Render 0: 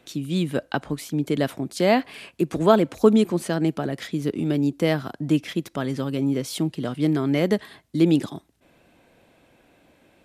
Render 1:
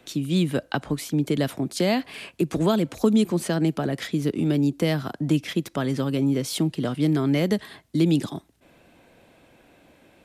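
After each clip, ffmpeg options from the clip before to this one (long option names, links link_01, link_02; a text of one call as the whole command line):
ffmpeg -i in.wav -filter_complex "[0:a]acrossover=split=210|3000[link_01][link_02][link_03];[link_02]acompressor=threshold=-25dB:ratio=4[link_04];[link_01][link_04][link_03]amix=inputs=3:normalize=0,volume=2.5dB" out.wav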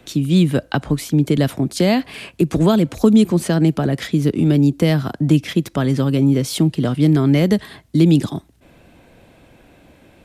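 ffmpeg -i in.wav -af "lowshelf=frequency=150:gain=10,volume=4.5dB" out.wav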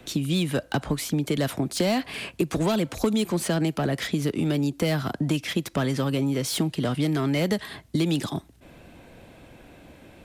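ffmpeg -i in.wav -filter_complex "[0:a]acrossover=split=550[link_01][link_02];[link_01]acompressor=threshold=-24dB:ratio=6[link_03];[link_02]asoftclip=type=tanh:threshold=-23dB[link_04];[link_03][link_04]amix=inputs=2:normalize=0" out.wav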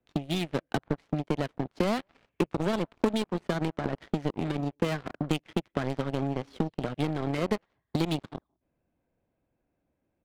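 ffmpeg -i in.wav -filter_complex "[0:a]asplit=2[link_01][link_02];[link_02]adelay=180,highpass=300,lowpass=3400,asoftclip=type=hard:threshold=-19.5dB,volume=-15dB[link_03];[link_01][link_03]amix=inputs=2:normalize=0,aeval=exprs='0.316*(cos(1*acos(clip(val(0)/0.316,-1,1)))-cos(1*PI/2))+0.0355*(cos(3*acos(clip(val(0)/0.316,-1,1)))-cos(3*PI/2))+0.0316*(cos(7*acos(clip(val(0)/0.316,-1,1)))-cos(7*PI/2))':channel_layout=same,adynamicsmooth=sensitivity=7:basefreq=2000" out.wav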